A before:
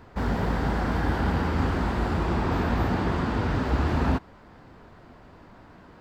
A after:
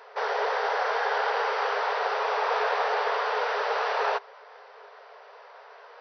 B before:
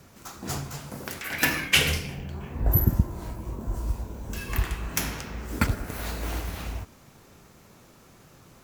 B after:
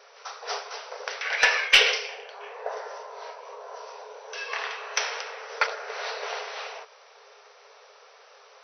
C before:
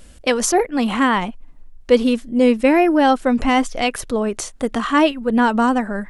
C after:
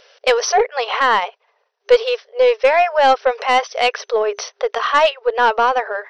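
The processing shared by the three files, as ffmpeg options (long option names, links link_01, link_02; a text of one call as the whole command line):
ffmpeg -i in.wav -af "afftfilt=real='re*between(b*sr/4096,400,6100)':imag='im*between(b*sr/4096,400,6100)':win_size=4096:overlap=0.75,aeval=exprs='0.631*(cos(1*acos(clip(val(0)/0.631,-1,1)))-cos(1*PI/2))+0.0178*(cos(4*acos(clip(val(0)/0.631,-1,1)))-cos(4*PI/2))+0.0447*(cos(5*acos(clip(val(0)/0.631,-1,1)))-cos(5*PI/2))':channel_layout=same,volume=2.5dB" out.wav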